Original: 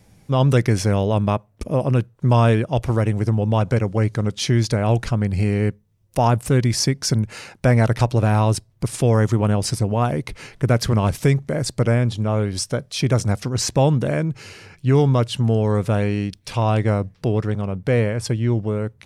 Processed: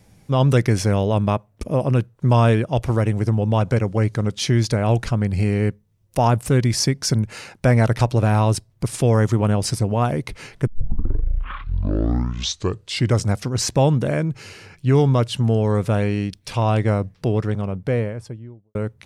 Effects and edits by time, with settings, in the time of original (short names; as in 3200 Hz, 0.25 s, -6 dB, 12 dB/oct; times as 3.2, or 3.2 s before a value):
10.67 tape start 2.64 s
17.53–18.75 studio fade out